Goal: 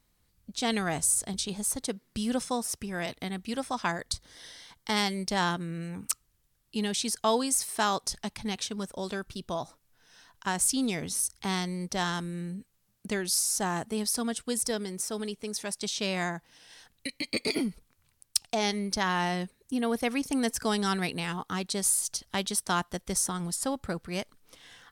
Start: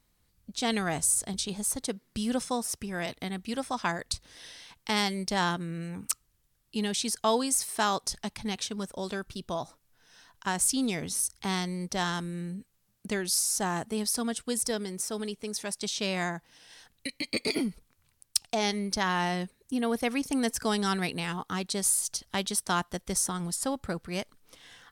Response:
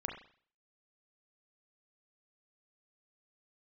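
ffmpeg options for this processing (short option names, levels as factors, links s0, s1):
-filter_complex "[0:a]asettb=1/sr,asplit=3[s0][s1][s2];[s0]atrim=end=4.014[s3];[s1]atrim=start=4.01:end=4.97,asetpts=PTS-STARTPTS,afade=t=in:d=0.004:c=qsin,afade=t=out:st=0.956:d=0.004:c=qsin,bandreject=f=2600:w=5.7[s4];[s2]atrim=start=4.966[s5];[s3][s4]acrossfade=d=0.004:c1=hsin:c2=qsin[s6];[s6][s5]acrossfade=d=0.004:c1=qsin:c2=hsin"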